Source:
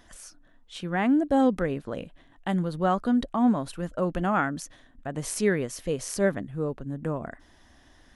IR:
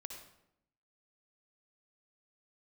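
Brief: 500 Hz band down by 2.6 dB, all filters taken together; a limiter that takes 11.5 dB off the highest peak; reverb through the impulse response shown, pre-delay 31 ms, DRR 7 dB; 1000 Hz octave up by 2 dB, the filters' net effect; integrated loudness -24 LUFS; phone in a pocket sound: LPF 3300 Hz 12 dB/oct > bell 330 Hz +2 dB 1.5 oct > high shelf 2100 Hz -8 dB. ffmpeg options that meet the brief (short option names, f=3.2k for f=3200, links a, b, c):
-filter_complex "[0:a]equalizer=f=500:t=o:g=-6,equalizer=f=1k:t=o:g=6.5,alimiter=limit=-21dB:level=0:latency=1,asplit=2[a][b];[1:a]atrim=start_sample=2205,adelay=31[c];[b][c]afir=irnorm=-1:irlink=0,volume=-3.5dB[d];[a][d]amix=inputs=2:normalize=0,lowpass=3.3k,equalizer=f=330:t=o:w=1.5:g=2,highshelf=f=2.1k:g=-8,volume=7dB"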